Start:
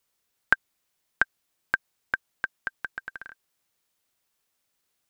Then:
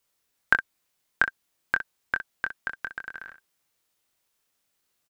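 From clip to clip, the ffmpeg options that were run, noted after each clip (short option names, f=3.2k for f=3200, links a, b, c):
-af "aecho=1:1:24|63:0.501|0.266"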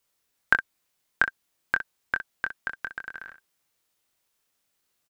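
-af anull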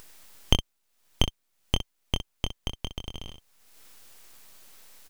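-af "highpass=290,acompressor=mode=upward:threshold=-31dB:ratio=2.5,aeval=exprs='abs(val(0))':c=same,volume=1dB"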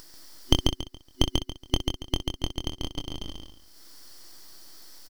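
-filter_complex "[0:a]superequalizer=6b=2.51:12b=0.501:14b=2.82,asplit=2[a][b];[b]aecho=0:1:140|280|420|560:0.668|0.174|0.0452|0.0117[c];[a][c]amix=inputs=2:normalize=0"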